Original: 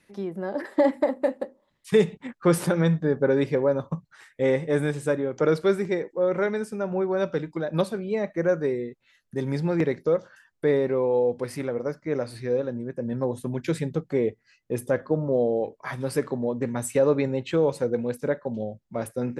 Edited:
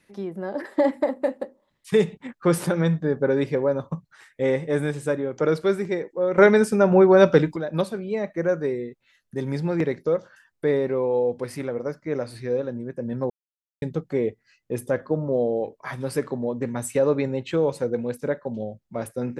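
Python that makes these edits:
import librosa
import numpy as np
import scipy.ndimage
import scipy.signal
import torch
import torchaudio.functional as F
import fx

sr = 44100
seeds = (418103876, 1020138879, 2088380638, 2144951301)

y = fx.edit(x, sr, fx.clip_gain(start_s=6.38, length_s=1.18, db=11.0),
    fx.silence(start_s=13.3, length_s=0.52), tone=tone)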